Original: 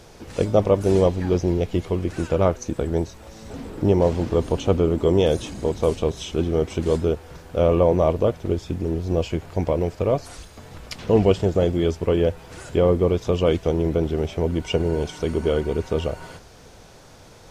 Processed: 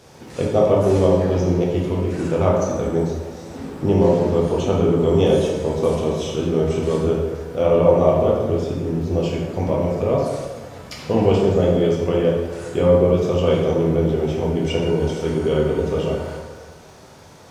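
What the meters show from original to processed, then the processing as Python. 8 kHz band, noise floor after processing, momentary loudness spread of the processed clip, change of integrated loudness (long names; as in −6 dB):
can't be measured, −43 dBFS, 10 LU, +3.0 dB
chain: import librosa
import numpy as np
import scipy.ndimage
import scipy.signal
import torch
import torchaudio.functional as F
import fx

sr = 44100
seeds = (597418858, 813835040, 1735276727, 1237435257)

y = scipy.signal.sosfilt(scipy.signal.butter(2, 78.0, 'highpass', fs=sr, output='sos'), x)
y = fx.dmg_crackle(y, sr, seeds[0], per_s=17.0, level_db=-41.0)
y = fx.rev_plate(y, sr, seeds[1], rt60_s=1.5, hf_ratio=0.55, predelay_ms=0, drr_db=-4.0)
y = y * 10.0 ** (-2.5 / 20.0)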